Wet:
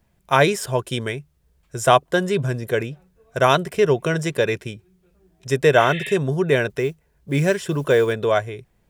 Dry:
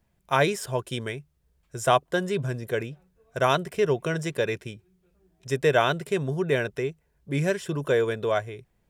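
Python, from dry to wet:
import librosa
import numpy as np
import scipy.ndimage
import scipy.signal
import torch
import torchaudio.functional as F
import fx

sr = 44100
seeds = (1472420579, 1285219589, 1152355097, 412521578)

y = fx.spec_repair(x, sr, seeds[0], start_s=5.81, length_s=0.31, low_hz=1700.0, high_hz=4300.0, source='both')
y = fx.mod_noise(y, sr, seeds[1], snr_db=33, at=(6.69, 8.12), fade=0.02)
y = y * librosa.db_to_amplitude(6.0)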